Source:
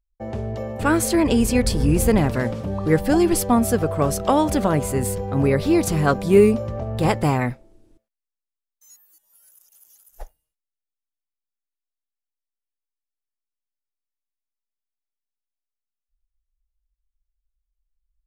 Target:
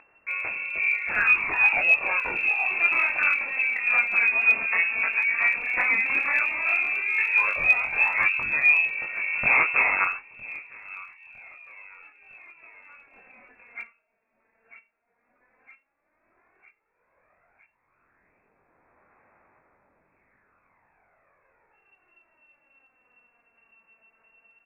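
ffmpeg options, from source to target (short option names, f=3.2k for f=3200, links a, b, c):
-af "acompressor=threshold=-19dB:ratio=5,highpass=f=300:p=1,highshelf=f=2.6k:g=11,aresample=11025,aeval=exprs='0.355*sin(PI/2*3.16*val(0)/0.355)':c=same,aresample=44100,aecho=1:1:710|1420|2130|2840:0.126|0.0541|0.0233|0.01,flanger=delay=15.5:depth=2.3:speed=1.6,lowpass=f=3.1k:t=q:w=0.5098,lowpass=f=3.1k:t=q:w=0.6013,lowpass=f=3.1k:t=q:w=0.9,lowpass=f=3.1k:t=q:w=2.563,afreqshift=-3700,acompressor=mode=upward:threshold=-36dB:ratio=2.5,aphaser=in_gain=1:out_gain=1:delay=3.3:decay=0.5:speed=0.14:type=sinusoidal,asetrate=32667,aresample=44100,volume=-7dB"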